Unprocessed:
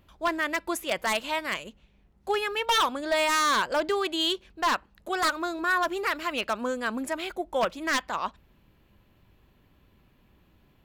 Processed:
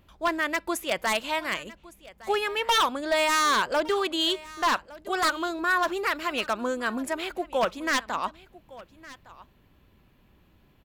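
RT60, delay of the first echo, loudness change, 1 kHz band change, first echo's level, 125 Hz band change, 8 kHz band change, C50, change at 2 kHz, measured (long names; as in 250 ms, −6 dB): no reverb audible, 1,161 ms, +1.0 dB, +1.0 dB, −20.0 dB, can't be measured, +1.0 dB, no reverb audible, +1.0 dB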